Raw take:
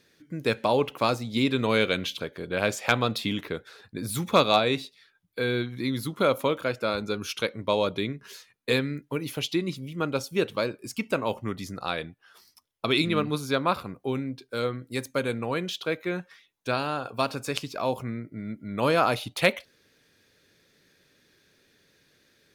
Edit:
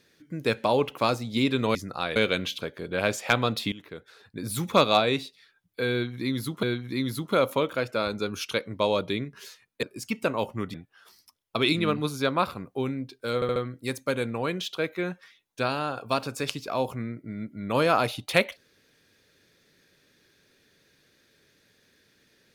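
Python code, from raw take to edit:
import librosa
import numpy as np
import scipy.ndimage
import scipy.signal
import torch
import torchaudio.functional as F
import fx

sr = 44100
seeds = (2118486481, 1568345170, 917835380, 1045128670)

y = fx.edit(x, sr, fx.fade_in_from(start_s=3.31, length_s=0.8, floor_db=-17.0),
    fx.repeat(start_s=5.51, length_s=0.71, count=2),
    fx.cut(start_s=8.71, length_s=2.0),
    fx.move(start_s=11.62, length_s=0.41, to_s=1.75),
    fx.stutter(start_s=14.64, slice_s=0.07, count=4), tone=tone)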